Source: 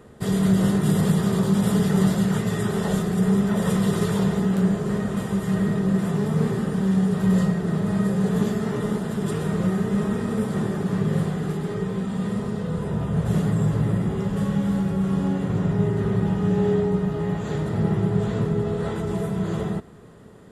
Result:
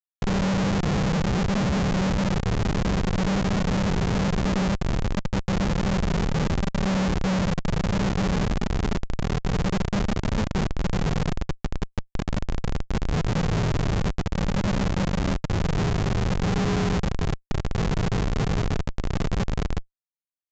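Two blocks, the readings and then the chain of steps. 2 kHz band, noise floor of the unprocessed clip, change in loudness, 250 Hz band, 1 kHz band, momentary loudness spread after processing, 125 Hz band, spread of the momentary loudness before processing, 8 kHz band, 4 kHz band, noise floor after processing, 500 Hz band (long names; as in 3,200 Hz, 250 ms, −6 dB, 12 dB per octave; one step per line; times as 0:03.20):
+3.5 dB, −30 dBFS, −2.5 dB, −4.5 dB, +2.5 dB, 6 LU, −2.0 dB, 6 LU, −0.5 dB, +5.0 dB, −74 dBFS, −4.0 dB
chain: comparator with hysteresis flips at −19.5 dBFS
downsampling to 16,000 Hz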